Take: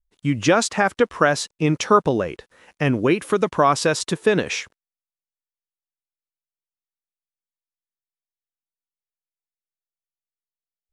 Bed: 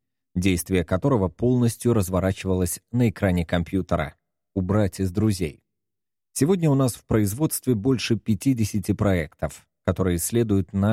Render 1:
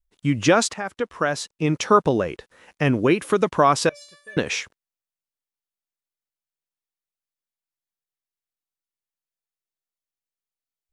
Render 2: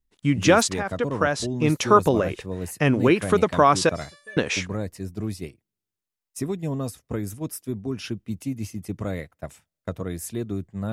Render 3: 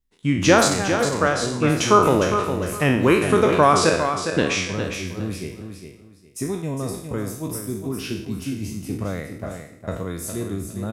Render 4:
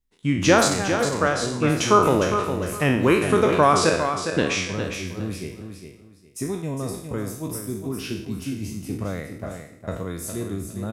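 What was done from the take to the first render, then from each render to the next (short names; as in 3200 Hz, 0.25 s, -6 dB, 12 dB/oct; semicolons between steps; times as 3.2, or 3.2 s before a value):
0.74–2.06 fade in, from -12.5 dB; 3.89–4.37 resonator 580 Hz, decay 0.41 s, mix 100%
add bed -8.5 dB
spectral trails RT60 0.64 s; on a send: feedback echo 0.408 s, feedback 24%, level -8 dB
gain -1.5 dB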